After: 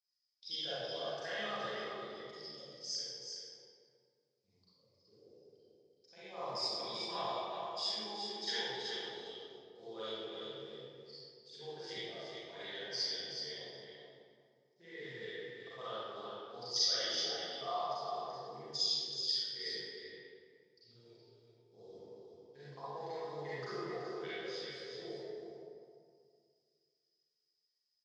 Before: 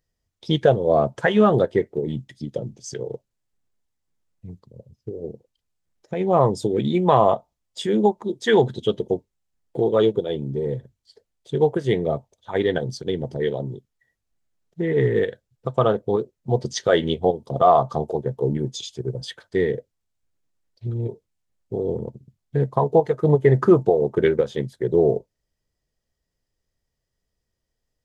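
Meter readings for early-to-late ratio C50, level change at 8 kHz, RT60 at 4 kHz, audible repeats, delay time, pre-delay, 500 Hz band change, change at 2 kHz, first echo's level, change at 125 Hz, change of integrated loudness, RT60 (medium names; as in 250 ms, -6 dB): -8.0 dB, -5.5 dB, 1.4 s, 1, 377 ms, 34 ms, -24.0 dB, -13.5 dB, -5.0 dB, -32.5 dB, -17.5 dB, 2.1 s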